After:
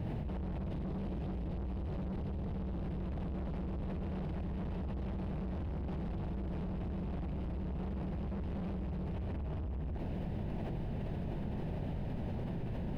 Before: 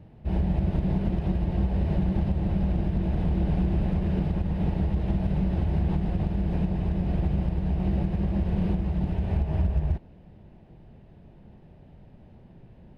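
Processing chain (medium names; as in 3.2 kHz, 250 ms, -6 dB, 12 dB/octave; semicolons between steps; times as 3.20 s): 0.64–2.71 s: peaking EQ 1.2 kHz -7 dB 0.85 oct; saturation -31 dBFS, distortion -7 dB; level flattener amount 100%; trim -6 dB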